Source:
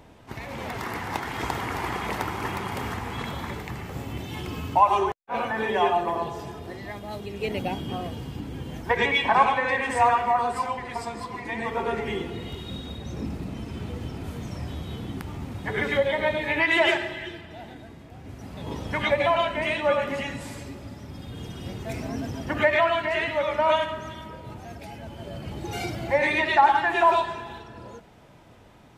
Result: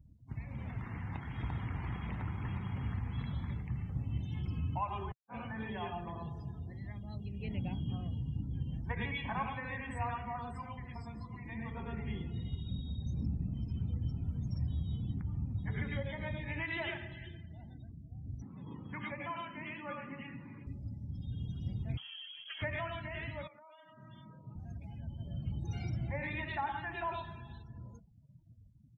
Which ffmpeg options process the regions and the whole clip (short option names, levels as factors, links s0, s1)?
-filter_complex "[0:a]asettb=1/sr,asplit=3[s0][s1][s2];[s0]atrim=end=18.424[s3];[s1]atrim=start=18.42:end=20.67,asetpts=PTS-STARTPTS,afade=t=in:d=0.004:c=qsin,afade=t=out:st=2.246:d=0.004:c=qsin,acompressor=mode=upward:threshold=0.0355:ratio=2.5:attack=3.2:release=140:knee=2.83:detection=peak,highpass=220,equalizer=f=340:t=q:w=4:g=4,equalizer=f=640:t=q:w=4:g=-8,equalizer=f=1100:t=q:w=4:g=5,lowpass=f=2900:w=0.5412,lowpass=f=2900:w=1.3066[s4];[s2]atrim=start=20.666[s5];[s3][s4]acrossfade=d=0.004:c1=hsin:c2=qsin[s6];[s6][s5]acrossfade=d=0.004:c1=qsin:c2=hsin,asettb=1/sr,asplit=3[s7][s8][s9];[s7]atrim=end=21.974[s10];[s8]atrim=start=21.97:end=22.62,asetpts=PTS-STARTPTS,afade=t=in:d=0.004:c=qsin,afade=t=out:st=0.646:d=0.004:c=qsin,acrusher=bits=7:dc=4:mix=0:aa=0.000001,lowpass=f=2900:t=q:w=0.5098,lowpass=f=2900:t=q:w=0.6013,lowpass=f=2900:t=q:w=0.9,lowpass=f=2900:t=q:w=2.563,afreqshift=-3400[s11];[s9]atrim=start=22.616[s12];[s10][s11]acrossfade=d=0.004:c1=hsin:c2=qsin[s13];[s13][s12]acrossfade=d=0.004:c1=qsin:c2=hsin,asettb=1/sr,asplit=3[s14][s15][s16];[s14]atrim=end=23.474[s17];[s15]atrim=start=23.47:end=24.56,asetpts=PTS-STARTPTS,afade=t=in:d=0.004:c=qsin,afade=t=out:st=1.086:d=0.004:c=qsin,highpass=f=110:w=0.5412,highpass=f=110:w=1.3066,bass=f=250:g=-4,treble=f=4000:g=-11,acompressor=threshold=0.0158:ratio=8:attack=3.2:release=140:knee=1:detection=peak[s18];[s16]atrim=start=24.556[s19];[s17][s18]acrossfade=d=0.004:c1=hsin:c2=qsin[s20];[s20][s19]acrossfade=d=0.004:c1=qsin:c2=hsin,acrossover=split=2600[s21][s22];[s22]acompressor=threshold=0.00398:ratio=4:attack=1:release=60[s23];[s21][s23]amix=inputs=2:normalize=0,afftdn=nr=32:nf=-42,firequalizer=gain_entry='entry(130,0);entry(390,-21);entry(5500,0)':delay=0.05:min_phase=1"